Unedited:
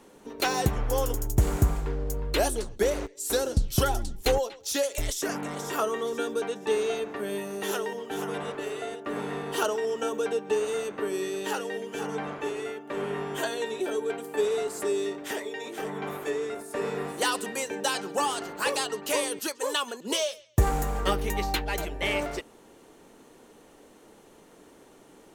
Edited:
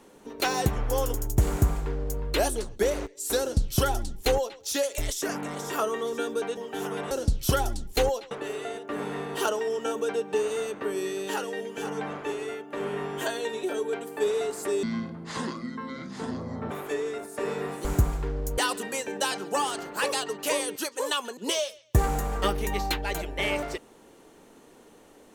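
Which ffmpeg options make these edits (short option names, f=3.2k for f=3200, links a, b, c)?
-filter_complex "[0:a]asplit=8[a][b][c][d][e][f][g][h];[a]atrim=end=6.572[i];[b]atrim=start=7.938:end=8.482[j];[c]atrim=start=3.398:end=4.602[k];[d]atrim=start=8.478:end=15.004[l];[e]atrim=start=15:end=16.07,asetpts=PTS-STARTPTS,asetrate=25137,aresample=44100,atrim=end_sample=82784,asetpts=PTS-STARTPTS[m];[f]atrim=start=16.066:end=17.212[n];[g]atrim=start=1.478:end=2.212[o];[h]atrim=start=17.208[p];[i][j]acrossfade=d=0.004:c1=hsin:c2=hsin[q];[q][k]acrossfade=d=0.004:c1=hsin:c2=hsin[r];[r][l]acrossfade=d=0.004:c1=hsin:c2=hsin[s];[s][m]acrossfade=d=0.004:c1=hsin:c2=hsin[t];[t][n]acrossfade=d=0.004:c1=hsin:c2=hsin[u];[u][o]acrossfade=d=0.004:c1=hsin:c2=hsin[v];[v][p]acrossfade=d=0.004:c1=hsin:c2=hsin"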